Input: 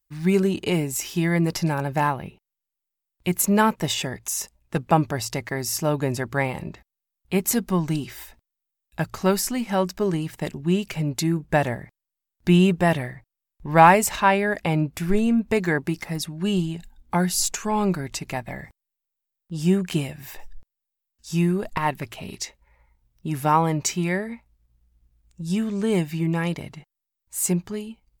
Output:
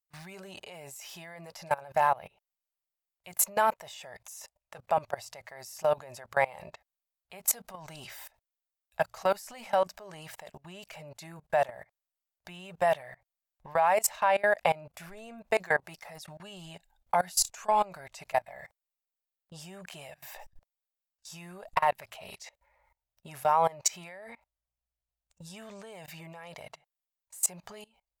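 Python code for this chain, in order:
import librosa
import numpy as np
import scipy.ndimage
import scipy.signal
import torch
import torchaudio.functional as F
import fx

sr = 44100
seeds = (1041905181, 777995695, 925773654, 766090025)

y = fx.low_shelf_res(x, sr, hz=440.0, db=-12.0, q=3.0)
y = fx.level_steps(y, sr, step_db=23)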